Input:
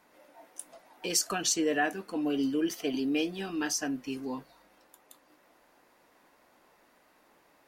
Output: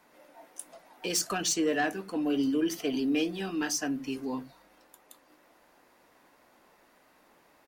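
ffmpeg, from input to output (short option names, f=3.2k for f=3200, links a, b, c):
-filter_complex "[0:a]acrossover=split=300[a][b];[a]aecho=1:1:78:0.531[c];[b]asoftclip=type=tanh:threshold=-23dB[d];[c][d]amix=inputs=2:normalize=0,volume=1.5dB"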